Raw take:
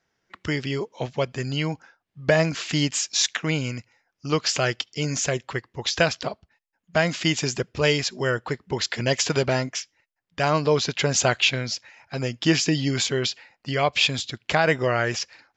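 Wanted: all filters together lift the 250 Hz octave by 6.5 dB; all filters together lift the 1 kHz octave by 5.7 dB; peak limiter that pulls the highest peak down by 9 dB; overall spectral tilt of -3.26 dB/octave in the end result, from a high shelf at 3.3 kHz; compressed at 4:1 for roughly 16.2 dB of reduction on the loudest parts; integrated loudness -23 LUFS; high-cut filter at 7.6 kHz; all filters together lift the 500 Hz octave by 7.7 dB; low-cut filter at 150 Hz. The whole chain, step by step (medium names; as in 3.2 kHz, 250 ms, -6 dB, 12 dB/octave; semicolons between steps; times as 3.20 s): high-pass 150 Hz; low-pass 7.6 kHz; peaking EQ 250 Hz +7 dB; peaking EQ 500 Hz +6.5 dB; peaking EQ 1 kHz +4 dB; treble shelf 3.3 kHz +6.5 dB; compression 4:1, threshold -28 dBFS; trim +9 dB; peak limiter -10 dBFS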